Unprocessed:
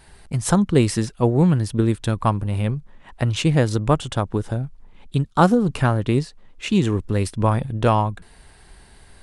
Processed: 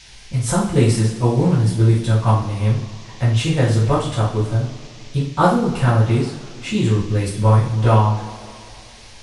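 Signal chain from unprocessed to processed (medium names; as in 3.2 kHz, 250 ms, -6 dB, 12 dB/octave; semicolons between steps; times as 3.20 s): two-slope reverb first 0.47 s, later 2.8 s, from -19 dB, DRR -9 dB; band noise 1.8–6.4 kHz -38 dBFS; trim -8 dB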